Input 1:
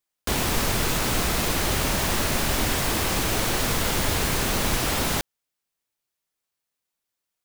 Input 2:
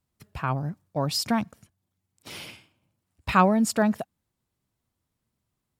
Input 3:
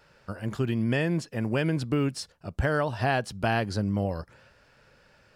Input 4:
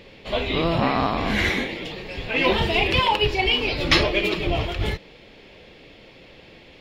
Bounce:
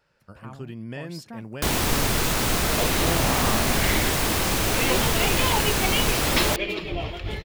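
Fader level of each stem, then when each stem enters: +1.0, -16.0, -9.5, -6.0 dB; 1.35, 0.00, 0.00, 2.45 s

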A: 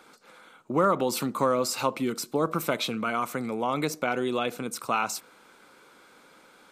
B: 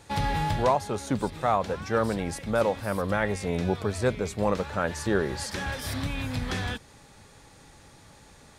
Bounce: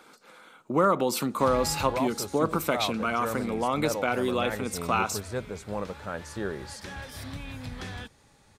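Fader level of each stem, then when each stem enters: +0.5, -7.5 dB; 0.00, 1.30 s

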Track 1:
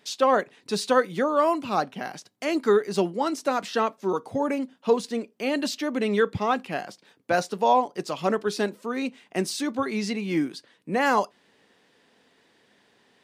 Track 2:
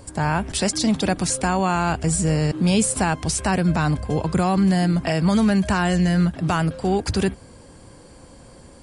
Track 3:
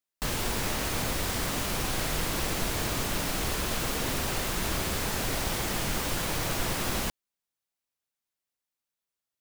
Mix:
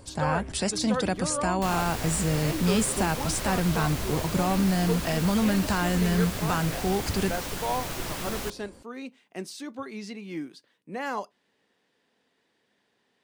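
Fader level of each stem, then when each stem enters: -10.0, -6.0, -4.0 dB; 0.00, 0.00, 1.40 s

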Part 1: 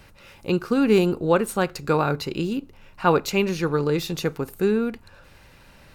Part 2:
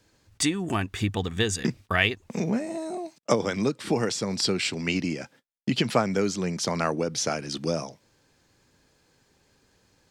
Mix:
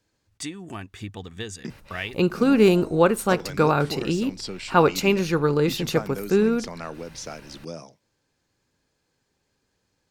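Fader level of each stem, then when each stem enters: +1.5, -9.0 dB; 1.70, 0.00 s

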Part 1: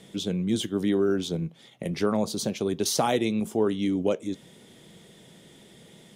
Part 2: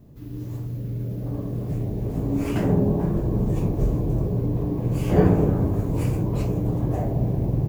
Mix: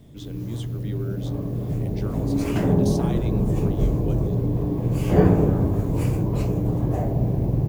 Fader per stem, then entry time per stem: -11.5, +1.0 dB; 0.00, 0.00 s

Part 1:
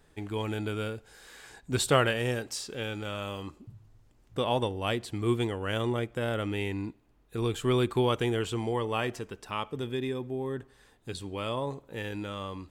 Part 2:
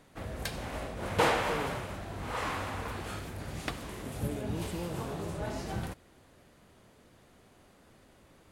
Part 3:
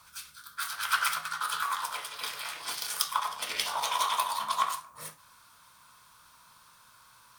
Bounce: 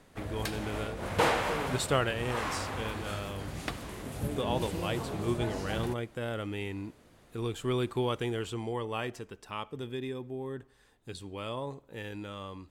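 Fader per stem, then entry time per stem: -4.5 dB, 0.0 dB, off; 0.00 s, 0.00 s, off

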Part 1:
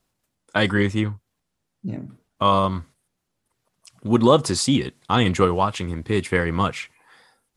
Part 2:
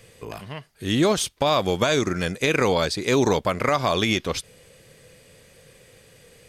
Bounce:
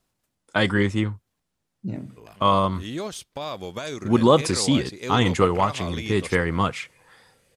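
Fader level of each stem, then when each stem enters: -1.0, -11.5 dB; 0.00, 1.95 s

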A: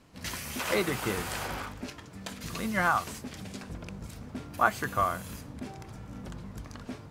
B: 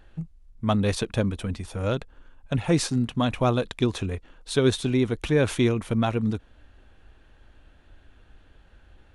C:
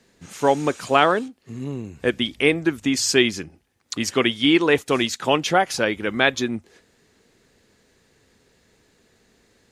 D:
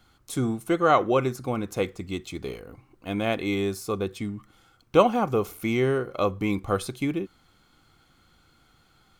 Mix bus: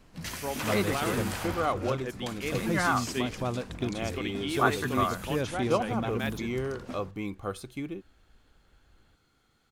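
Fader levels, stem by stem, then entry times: -1.0, -9.5, -17.0, -9.0 dB; 0.00, 0.00, 0.00, 0.75 s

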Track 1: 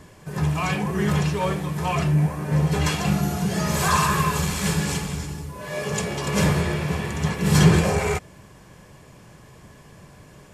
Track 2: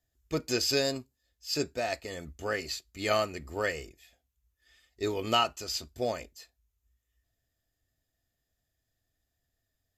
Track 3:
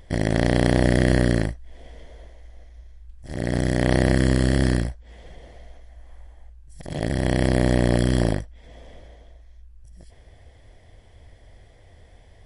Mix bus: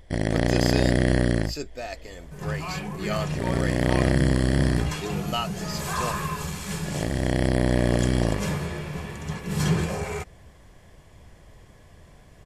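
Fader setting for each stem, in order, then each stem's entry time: -8.0, -3.0, -2.5 dB; 2.05, 0.00, 0.00 s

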